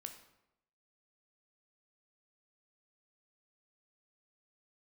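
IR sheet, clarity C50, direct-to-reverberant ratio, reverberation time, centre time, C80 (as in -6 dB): 9.0 dB, 5.5 dB, 0.85 s, 15 ms, 12.0 dB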